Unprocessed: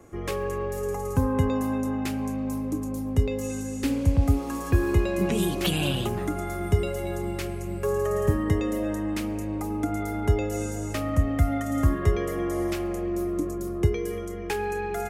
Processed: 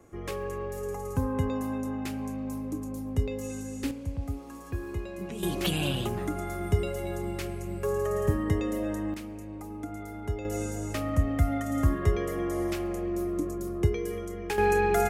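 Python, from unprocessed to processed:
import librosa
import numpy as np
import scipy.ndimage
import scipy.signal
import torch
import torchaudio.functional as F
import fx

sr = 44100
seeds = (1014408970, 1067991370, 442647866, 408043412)

y = fx.gain(x, sr, db=fx.steps((0.0, -5.0), (3.91, -12.5), (5.43, -3.0), (9.14, -10.0), (10.45, -2.5), (14.58, 6.0)))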